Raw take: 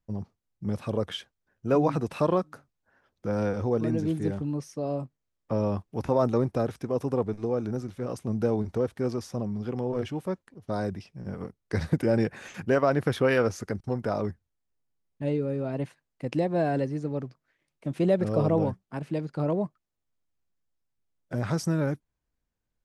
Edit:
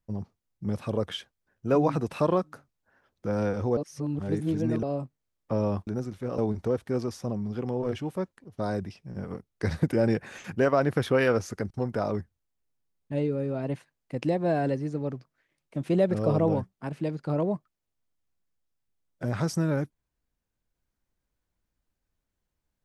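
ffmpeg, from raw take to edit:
-filter_complex "[0:a]asplit=5[a][b][c][d][e];[a]atrim=end=3.772[f];[b]atrim=start=3.768:end=4.832,asetpts=PTS-STARTPTS,areverse[g];[c]atrim=start=4.828:end=5.872[h];[d]atrim=start=7.638:end=8.152[i];[e]atrim=start=8.478[j];[f][g]acrossfade=d=0.004:c1=hsin:c2=hsin[k];[k][h]acrossfade=d=0.004:c1=hsin:c2=hsin[l];[l][i]acrossfade=d=0.004:c1=hsin:c2=hsin[m];[m][j]acrossfade=d=0.004:c1=hsin:c2=hsin"

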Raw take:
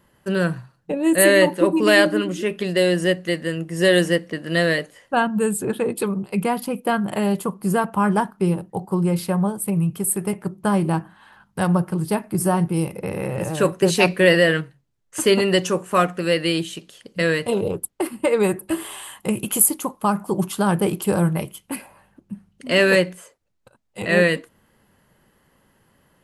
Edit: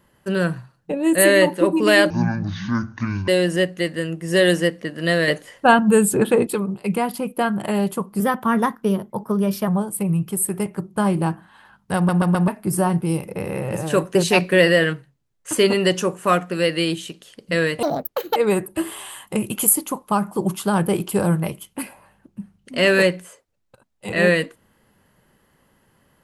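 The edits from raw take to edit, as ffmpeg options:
-filter_complex "[0:a]asplit=13[a][b][c][d][e][f][g][h][i][j][k][l][m];[a]atrim=end=2.104[n];[b]atrim=start=2.1:end=2.76,asetpts=PTS-STARTPTS,asetrate=24696,aresample=44100[o];[c]atrim=start=2.756:end=4.762[p];[d]atrim=start=4.758:end=5.952,asetpts=PTS-STARTPTS,volume=6dB[q];[e]atrim=start=5.948:end=7.684[r];[f]atrim=start=7.68:end=9.35,asetpts=PTS-STARTPTS,asetrate=49833,aresample=44100,atrim=end_sample=65174,asetpts=PTS-STARTPTS[s];[g]atrim=start=9.346:end=11.762[t];[h]atrim=start=11.628:end=11.762[u];[i]atrim=start=11.628:end=11.762[v];[j]atrim=start=11.628:end=11.762[w];[k]atrim=start=12.148:end=17.504[x];[l]atrim=start=17.5:end=18.29,asetpts=PTS-STARTPTS,asetrate=65268,aresample=44100[y];[m]atrim=start=18.286[z];[n][o]acrossfade=d=0.004:c1=hsin:c2=hsin[aa];[aa][p]acrossfade=d=0.004:c1=hsin:c2=hsin[ab];[ab][q]acrossfade=d=0.004:c1=hsin:c2=hsin[ac];[ac][r]acrossfade=d=0.004:c1=hsin:c2=hsin[ad];[ad][s]acrossfade=d=0.004:c1=hsin:c2=hsin[ae];[ae][t]acrossfade=d=0.004:c1=hsin:c2=hsin[af];[af][u]acrossfade=d=0.004:c1=hsin:c2=hsin[ag];[ag][v]acrossfade=d=0.004:c1=hsin:c2=hsin[ah];[ah][w]acrossfade=d=0.004:c1=hsin:c2=hsin[ai];[ai][x]acrossfade=d=0.004:c1=hsin:c2=hsin[aj];[aj][y]acrossfade=d=0.004:c1=hsin:c2=hsin[ak];[ak][z]acrossfade=d=0.004:c1=hsin:c2=hsin"

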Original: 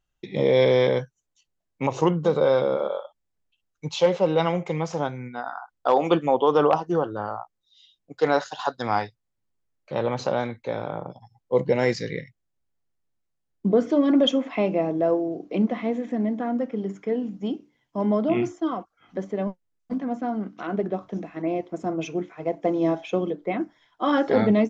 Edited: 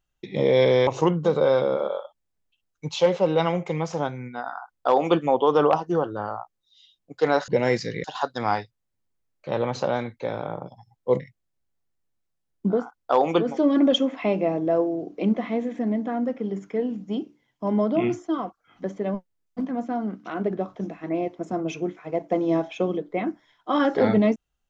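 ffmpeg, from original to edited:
-filter_complex "[0:a]asplit=7[a][b][c][d][e][f][g];[a]atrim=end=0.872[h];[b]atrim=start=1.868:end=8.482[i];[c]atrim=start=11.638:end=12.202[j];[d]atrim=start=8.478:end=11.642[k];[e]atrim=start=12.198:end=13.91[l];[f]atrim=start=5.43:end=6.34[m];[g]atrim=start=13.67[n];[h][i]acrossfade=d=0.004:c1=hsin:c2=hsin[o];[o][j]acrossfade=d=0.004:c1=hsin:c2=hsin[p];[p][k]acrossfade=d=0.004:c1=hsin:c2=hsin[q];[q][l]acrossfade=d=0.004:c1=hsin:c2=hsin[r];[r][m]acrossfade=d=0.24:c1=tri:c2=tri[s];[s][n]acrossfade=d=0.24:c1=tri:c2=tri"

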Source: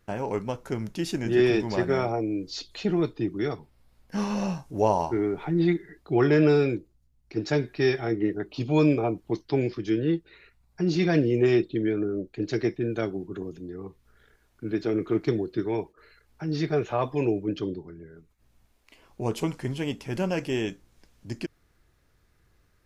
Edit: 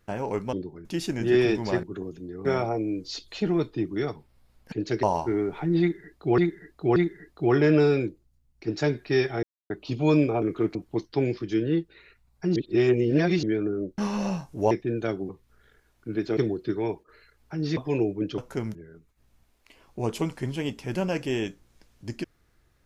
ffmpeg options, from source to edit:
-filter_complex "[0:a]asplit=22[a][b][c][d][e][f][g][h][i][j][k][l][m][n][o][p][q][r][s][t][u][v];[a]atrim=end=0.532[w];[b]atrim=start=17.648:end=17.972[x];[c]atrim=start=0.898:end=1.882[y];[d]atrim=start=13.228:end=13.852[z];[e]atrim=start=1.878:end=4.152[aa];[f]atrim=start=12.338:end=12.652[ab];[g]atrim=start=4.878:end=6.232[ac];[h]atrim=start=5.648:end=6.232[ad];[i]atrim=start=5.648:end=8.12,asetpts=PTS-STARTPTS,afade=t=out:st=2.468:d=0.004:c=hsin[ae];[j]atrim=start=8.12:end=8.39,asetpts=PTS-STARTPTS,volume=0[af];[k]atrim=start=8.39:end=9.112,asetpts=PTS-STARTPTS,afade=t=in:d=0.004:c=hsin[ag];[l]atrim=start=14.928:end=15.262[ah];[m]atrim=start=9.108:end=10.922[ai];[n]atrim=start=10.918:end=11.792,asetpts=PTS-STARTPTS,areverse[aj];[o]atrim=start=11.788:end=12.342[ak];[p]atrim=start=4.148:end=4.882[al];[q]atrim=start=12.648:end=13.232[am];[r]atrim=start=13.848:end=14.932[an];[s]atrim=start=15.258:end=16.662[ao];[t]atrim=start=17.038:end=17.652[ap];[u]atrim=start=0.528:end=0.902[aq];[v]atrim=start=17.968[ar];[w][x]acrossfade=d=0.004:c1=hsin:c2=hsin[as];[as][y]acrossfade=d=0.004:c1=hsin:c2=hsin[at];[at][z]acrossfade=d=0.004:c1=hsin:c2=hsin[au];[au][aa]acrossfade=d=0.004:c1=hsin:c2=hsin[av];[av][ab]acrossfade=d=0.004:c1=hsin:c2=hsin[aw];[aw][ac]acrossfade=d=0.004:c1=hsin:c2=hsin[ax];[ax][ad]acrossfade=d=0.004:c1=hsin:c2=hsin[ay];[ae][af][ag]concat=n=3:v=0:a=1[az];[ay][az]acrossfade=d=0.004:c1=hsin:c2=hsin[ba];[ba][ah]acrossfade=d=0.004:c1=hsin:c2=hsin[bb];[bb][ai]acrossfade=d=0.004:c1=hsin:c2=hsin[bc];[bc][aj]acrossfade=d=0.004:c1=hsin:c2=hsin[bd];[bd][ak]acrossfade=d=0.004:c1=hsin:c2=hsin[be];[be][al]acrossfade=d=0.004:c1=hsin:c2=hsin[bf];[bf][am]acrossfade=d=0.004:c1=hsin:c2=hsin[bg];[bg][an]acrossfade=d=0.004:c1=hsin:c2=hsin[bh];[bh][ao]acrossfade=d=0.004:c1=hsin:c2=hsin[bi];[bi][ap]acrossfade=d=0.004:c1=hsin:c2=hsin[bj];[bj][aq]acrossfade=d=0.004:c1=hsin:c2=hsin[bk];[bk][ar]acrossfade=d=0.004:c1=hsin:c2=hsin"

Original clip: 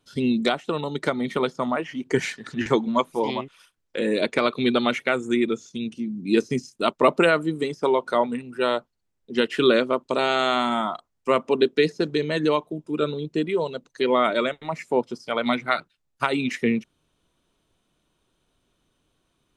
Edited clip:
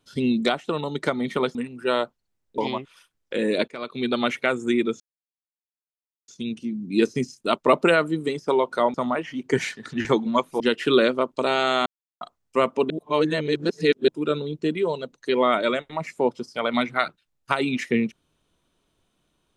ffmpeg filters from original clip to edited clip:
-filter_complex "[0:a]asplit=11[a][b][c][d][e][f][g][h][i][j][k];[a]atrim=end=1.552[l];[b]atrim=start=8.288:end=9.322[m];[c]atrim=start=3.208:end=4.31,asetpts=PTS-STARTPTS,afade=t=out:st=1.098:d=0.004:c=hsin:silence=0.0891251[n];[d]atrim=start=4.31:end=5.63,asetpts=PTS-STARTPTS,afade=t=in:d=0.65:silence=0.0891251,afade=t=out:st=1.316:d=0.004:c=hsin,apad=pad_dur=1.28[o];[e]atrim=start=5.63:end=8.292,asetpts=PTS-STARTPTS,afade=t=in:d=0.004:c=hsin[p];[f]atrim=start=1.548:end=3.212[q];[g]atrim=start=9.318:end=10.58,asetpts=PTS-STARTPTS,afade=t=out:st=1.258:d=0.004:c=hsin[r];[h]atrim=start=10.58:end=10.93,asetpts=PTS-STARTPTS,volume=0[s];[i]atrim=start=10.93:end=11.622,asetpts=PTS-STARTPTS,afade=t=in:d=0.004:c=hsin[t];[j]atrim=start=11.618:end=12.802,asetpts=PTS-STARTPTS,areverse[u];[k]atrim=start=12.798[v];[l][m]acrossfade=d=0.004:c1=hsin:c2=hsin[w];[n][o][p]concat=n=3:v=0:a=1[x];[w][x]acrossfade=d=0.004:c1=hsin:c2=hsin[y];[y][q]acrossfade=d=0.004:c1=hsin:c2=hsin[z];[r][s][t]concat=n=3:v=0:a=1[aa];[z][aa]acrossfade=d=0.004:c1=hsin:c2=hsin[ab];[ab][u]acrossfade=d=0.004:c1=hsin:c2=hsin[ac];[ac][v]acrossfade=d=0.004:c1=hsin:c2=hsin"

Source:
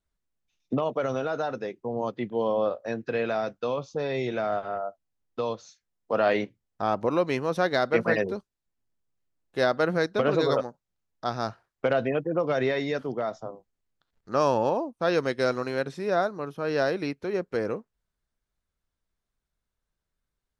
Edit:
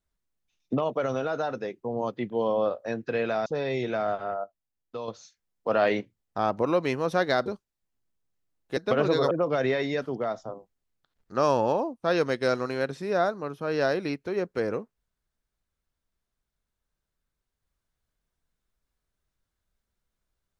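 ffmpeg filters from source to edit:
-filter_complex "[0:a]asplit=7[a][b][c][d][e][f][g];[a]atrim=end=3.462[h];[b]atrim=start=3.898:end=4.882[i];[c]atrim=start=4.878:end=5.522,asetpts=PTS-STARTPTS,volume=-6.5dB[j];[d]atrim=start=5.518:end=7.902[k];[e]atrim=start=8.298:end=9.612[l];[f]atrim=start=10.048:end=10.592[m];[g]atrim=start=12.278[n];[h][i]acrossfade=d=0.004:c1=hsin:c2=hsin[o];[o][j]acrossfade=d=0.004:c1=hsin:c2=hsin[p];[p][k]acrossfade=d=0.004:c1=hsin:c2=hsin[q];[q][l]acrossfade=d=0.004:c1=hsin:c2=hsin[r];[r][m]acrossfade=d=0.004:c1=hsin:c2=hsin[s];[s][n]acrossfade=d=0.004:c1=hsin:c2=hsin"

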